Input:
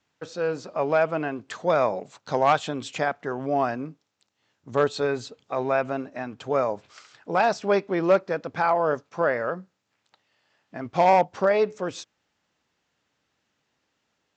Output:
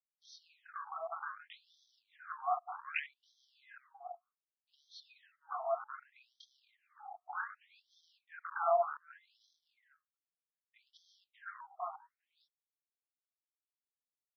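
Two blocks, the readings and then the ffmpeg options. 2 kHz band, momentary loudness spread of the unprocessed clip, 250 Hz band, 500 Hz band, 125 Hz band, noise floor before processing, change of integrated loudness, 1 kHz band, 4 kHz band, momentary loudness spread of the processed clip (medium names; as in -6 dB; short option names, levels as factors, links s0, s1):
-15.0 dB, 13 LU, under -40 dB, -19.5 dB, under -40 dB, -76 dBFS, -15.0 dB, -15.0 dB, -18.5 dB, 22 LU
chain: -filter_complex "[0:a]flanger=delay=18:depth=7.3:speed=0.87,agate=range=0.0224:threshold=0.00501:ratio=3:detection=peak,superequalizer=8b=2.82:9b=0.282,asplit=2[s0][s1];[s1]aecho=0:1:417:0.0668[s2];[s0][s2]amix=inputs=2:normalize=0,acrusher=bits=6:mode=log:mix=0:aa=0.000001,acompressor=threshold=0.0355:ratio=3,afwtdn=0.0141,alimiter=level_in=1.41:limit=0.0631:level=0:latency=1:release=85,volume=0.708,equalizer=f=69:w=3.5:g=-9,afftfilt=real='re*between(b*sr/1024,940*pow(4500/940,0.5+0.5*sin(2*PI*0.65*pts/sr))/1.41,940*pow(4500/940,0.5+0.5*sin(2*PI*0.65*pts/sr))*1.41)':imag='im*between(b*sr/1024,940*pow(4500/940,0.5+0.5*sin(2*PI*0.65*pts/sr))/1.41,940*pow(4500/940,0.5+0.5*sin(2*PI*0.65*pts/sr))*1.41)':win_size=1024:overlap=0.75,volume=2.99"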